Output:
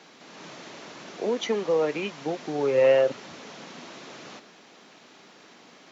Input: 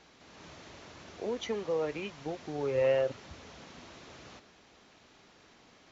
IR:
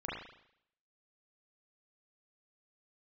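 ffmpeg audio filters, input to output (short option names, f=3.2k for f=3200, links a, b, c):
-af "highpass=f=160:w=0.5412,highpass=f=160:w=1.3066,volume=8dB"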